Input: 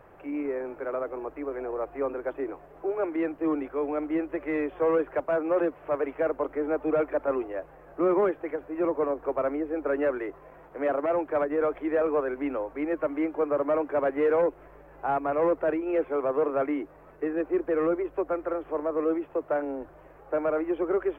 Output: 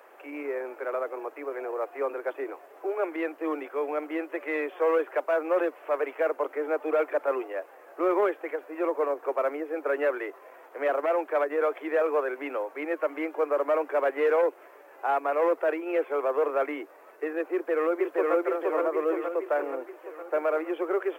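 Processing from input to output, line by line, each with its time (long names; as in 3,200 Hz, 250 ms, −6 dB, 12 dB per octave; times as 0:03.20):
0:17.52–0:18.34: delay throw 470 ms, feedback 60%, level −1 dB
whole clip: high-pass filter 360 Hz 24 dB per octave; high-shelf EQ 2,500 Hz +11.5 dB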